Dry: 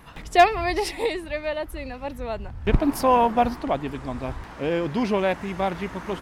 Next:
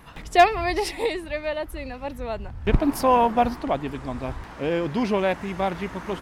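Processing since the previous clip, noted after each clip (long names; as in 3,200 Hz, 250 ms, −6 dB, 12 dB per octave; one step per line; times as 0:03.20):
no processing that can be heard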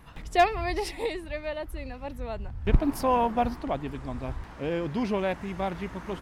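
low-shelf EQ 150 Hz +6.5 dB
level −6 dB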